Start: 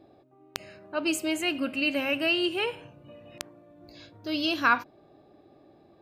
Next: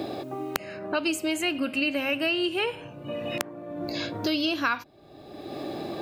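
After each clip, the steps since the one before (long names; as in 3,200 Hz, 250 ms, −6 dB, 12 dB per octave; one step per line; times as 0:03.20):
multiband upward and downward compressor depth 100%
level +1 dB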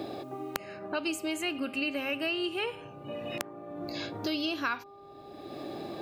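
hum with harmonics 400 Hz, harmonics 3, −46 dBFS −2 dB per octave
level −5.5 dB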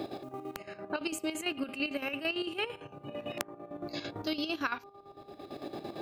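square-wave tremolo 8.9 Hz, depth 65%, duty 55%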